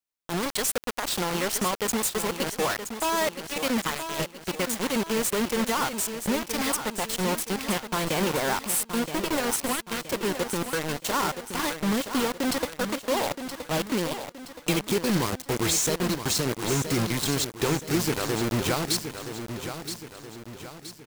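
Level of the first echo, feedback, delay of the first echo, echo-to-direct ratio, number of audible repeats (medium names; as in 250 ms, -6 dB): -9.0 dB, 46%, 972 ms, -8.0 dB, 4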